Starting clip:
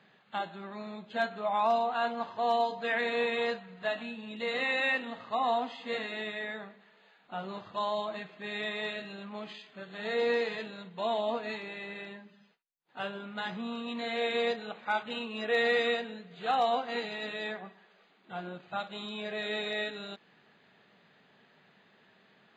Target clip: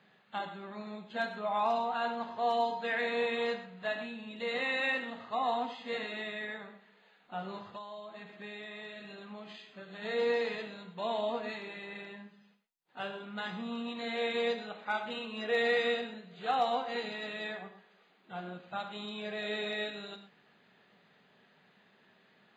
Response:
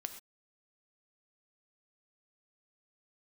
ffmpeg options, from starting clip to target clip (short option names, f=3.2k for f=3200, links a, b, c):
-filter_complex "[1:a]atrim=start_sample=2205[a];[0:a][a]afir=irnorm=-1:irlink=0,asettb=1/sr,asplit=3[b][c][d];[b]atrim=end=7.724[e];[c]atrim=start=7.72:end=10.02,asetpts=PTS-STARTPTS,afade=t=in:d=0.004:c=qsin,afade=t=out:st=2.296:d=0.004:c=qsin,acompressor=threshold=-42dB:ratio=12[f];[d]atrim=start=10.016[g];[e][f]acrossfade=d=0.004:c1=hsin:c2=qsin[h];[h][g]acrossfade=d=0.004:c1=qsin:c2=hsin"